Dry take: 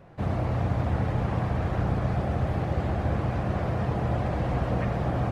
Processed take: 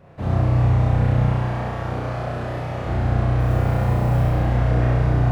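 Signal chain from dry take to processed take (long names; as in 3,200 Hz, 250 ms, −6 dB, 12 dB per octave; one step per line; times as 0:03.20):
0:01.25–0:02.84: high-pass filter 330 Hz 6 dB per octave
0:03.39–0:04.29: noise that follows the level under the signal 31 dB
flutter between parallel walls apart 5.6 metres, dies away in 1.2 s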